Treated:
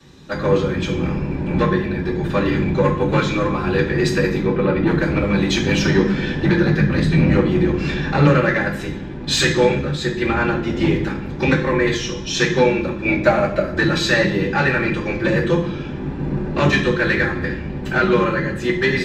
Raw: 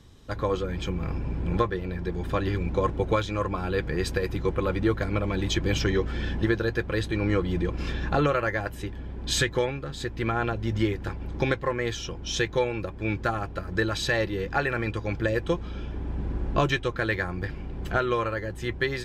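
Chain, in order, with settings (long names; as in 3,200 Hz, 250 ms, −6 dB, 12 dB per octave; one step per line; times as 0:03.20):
sub-octave generator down 1 octave, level +2 dB
0:06.64–0:07.30: low shelf with overshoot 240 Hz +8 dB, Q 1.5
soft clipping −17 dBFS, distortion −14 dB
0:04.39–0:04.87: high-frequency loss of the air 190 metres
0:13.06–0:13.63: hollow resonant body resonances 620/2,200 Hz, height 13 dB → 18 dB
convolution reverb RT60 0.65 s, pre-delay 3 ms, DRR −14.5 dB
level −2 dB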